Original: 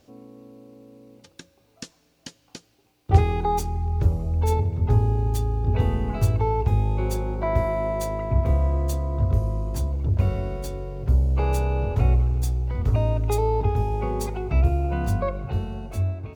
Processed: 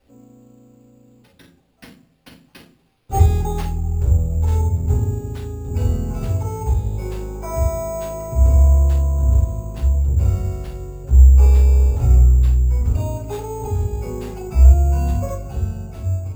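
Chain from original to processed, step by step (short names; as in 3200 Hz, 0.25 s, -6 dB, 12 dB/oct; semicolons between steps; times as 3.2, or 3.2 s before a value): 2.41–3.64 high shelf 5800 Hz +7.5 dB; shoebox room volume 280 m³, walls furnished, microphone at 7.2 m; sample-and-hold 6×; gain -13.5 dB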